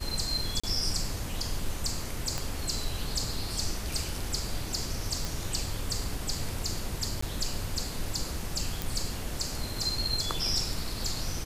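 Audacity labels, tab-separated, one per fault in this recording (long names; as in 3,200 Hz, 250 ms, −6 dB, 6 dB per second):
0.600000	0.640000	drop-out 35 ms
2.380000	2.380000	click −17 dBFS
5.250000	5.250000	click
7.210000	7.220000	drop-out 14 ms
8.820000	8.820000	click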